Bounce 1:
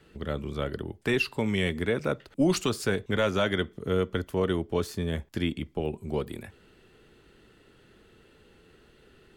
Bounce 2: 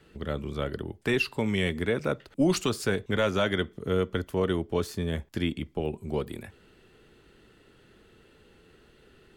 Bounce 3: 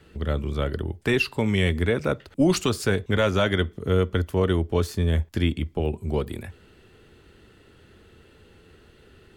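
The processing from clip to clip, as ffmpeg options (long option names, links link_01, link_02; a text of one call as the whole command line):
ffmpeg -i in.wav -af anull out.wav
ffmpeg -i in.wav -af "equalizer=frequency=81:width=2.3:gain=9.5,volume=3.5dB" out.wav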